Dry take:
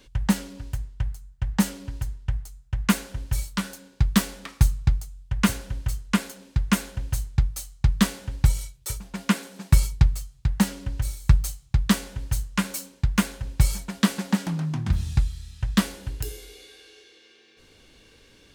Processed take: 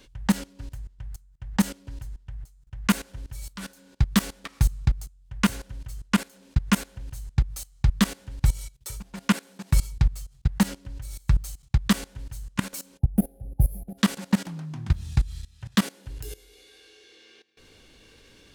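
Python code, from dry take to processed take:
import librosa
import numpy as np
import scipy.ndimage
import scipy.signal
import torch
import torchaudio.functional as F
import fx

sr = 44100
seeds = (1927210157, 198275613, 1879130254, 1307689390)

y = fx.spec_box(x, sr, start_s=12.99, length_s=1.0, low_hz=820.0, high_hz=9600.0, gain_db=-28)
y = fx.highpass(y, sr, hz=fx.line((15.6, 78.0), (16.05, 170.0)), slope=24, at=(15.6, 16.05), fade=0.02)
y = fx.level_steps(y, sr, step_db=19)
y = y * 10.0 ** (3.0 / 20.0)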